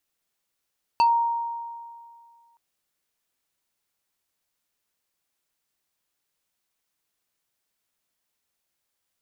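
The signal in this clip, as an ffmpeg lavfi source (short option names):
-f lavfi -i "aevalsrc='0.2*pow(10,-3*t/2.08)*sin(2*PI*933*t+0.52*pow(10,-3*t/0.15)*sin(2*PI*3.85*933*t))':d=1.57:s=44100"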